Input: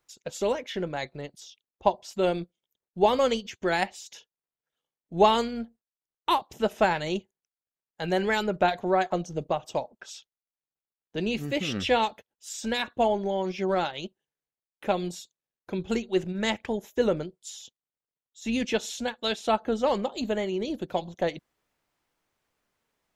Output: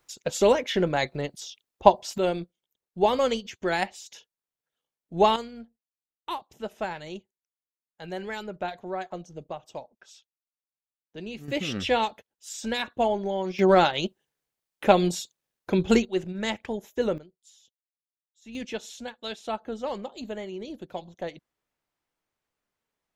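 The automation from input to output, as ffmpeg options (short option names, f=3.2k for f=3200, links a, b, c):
-af "asetnsamples=n=441:p=0,asendcmd='2.18 volume volume -0.5dB;5.36 volume volume -9dB;11.48 volume volume -0.5dB;13.59 volume volume 8dB;16.05 volume volume -2dB;17.18 volume volume -15dB;18.55 volume volume -7dB',volume=7dB"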